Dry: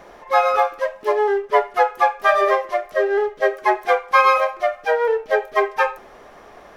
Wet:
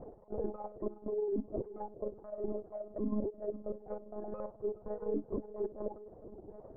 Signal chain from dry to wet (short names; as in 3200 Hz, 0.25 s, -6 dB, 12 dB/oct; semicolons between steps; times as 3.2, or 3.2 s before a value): trilling pitch shifter -7.5 st, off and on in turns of 0.271 s; de-hum 117.6 Hz, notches 8; reverb removal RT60 1.2 s; reverse; compressor 8:1, threshold -30 dBFS, peak gain reduction 19 dB; reverse; limiter -28 dBFS, peak gain reduction 7.5 dB; ladder low-pass 610 Hz, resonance 25%; diffused feedback echo 0.45 s, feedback 47%, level -15 dB; AM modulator 31 Hz, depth 65%; monotone LPC vocoder at 8 kHz 210 Hz; gain +9 dB